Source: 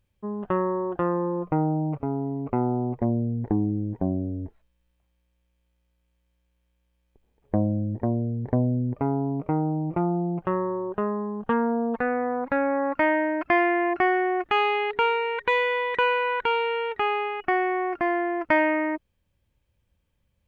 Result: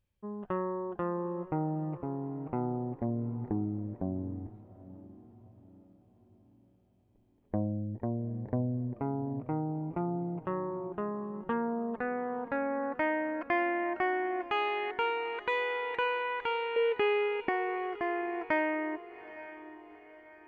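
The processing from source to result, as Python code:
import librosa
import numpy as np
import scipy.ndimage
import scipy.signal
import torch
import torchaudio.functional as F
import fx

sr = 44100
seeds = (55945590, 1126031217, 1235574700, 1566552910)

y = fx.graphic_eq(x, sr, hz=(125, 250, 500, 1000, 2000, 4000), db=(4, 9, 11, -10, 6, 4), at=(16.76, 17.49))
y = fx.echo_diffused(y, sr, ms=833, feedback_pct=43, wet_db=-15.5)
y = y * 10.0 ** (-8.5 / 20.0)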